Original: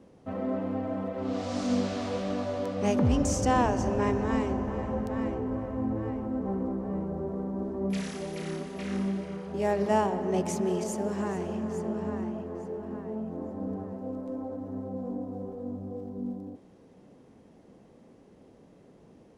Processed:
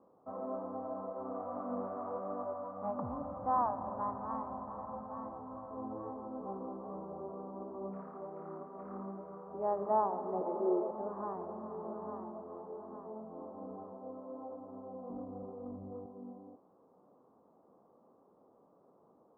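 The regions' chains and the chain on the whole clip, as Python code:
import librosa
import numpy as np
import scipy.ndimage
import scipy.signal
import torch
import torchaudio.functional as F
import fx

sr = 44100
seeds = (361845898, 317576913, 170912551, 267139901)

y = fx.chain(x, sr, fx.lowpass(hz=2700.0, slope=12),
    fx.peak_eq(hz=400.0, db=-15.0, octaves=0.57),
    fx.doppler_dist(depth_ms=0.16), at=(2.53, 5.71))
y = fx.chain(y, sr, fx.low_shelf(hz=440.0, db=-10.0),
    fx.small_body(hz=(350.0, 490.0), ring_ms=45, db=18), at=(10.41, 10.91))
y = fx.chain(y, sr, fx.tube_stage(drive_db=29.0, bias=0.3),
    fx.riaa(side='playback'), at=(15.1, 16.06))
y = scipy.signal.sosfilt(scipy.signal.cheby1(5, 1.0, 1200.0, 'lowpass', fs=sr, output='sos'), y)
y = np.diff(y, prepend=0.0)
y = y * librosa.db_to_amplitude(16.0)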